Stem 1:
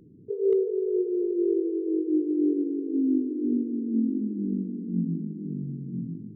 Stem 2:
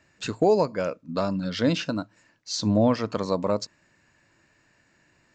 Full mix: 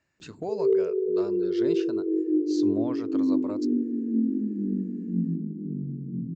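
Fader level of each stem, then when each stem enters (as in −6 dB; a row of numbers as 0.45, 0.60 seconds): +0.5, −13.0 decibels; 0.20, 0.00 seconds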